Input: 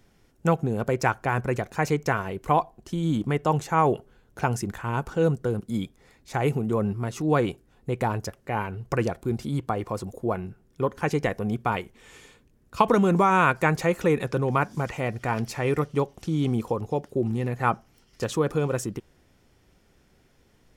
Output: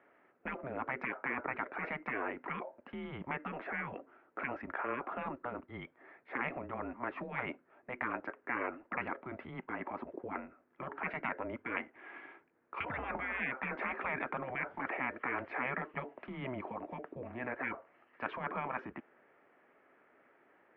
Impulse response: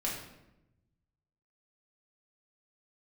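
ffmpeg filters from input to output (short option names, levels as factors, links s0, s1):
-af "highpass=f=510:t=q:w=0.5412,highpass=f=510:t=q:w=1.307,lowpass=f=2300:t=q:w=0.5176,lowpass=f=2300:t=q:w=0.7071,lowpass=f=2300:t=q:w=1.932,afreqshift=-130,afftfilt=real='re*lt(hypot(re,im),0.0708)':imag='im*lt(hypot(re,im),0.0708)':win_size=1024:overlap=0.75,volume=1.5"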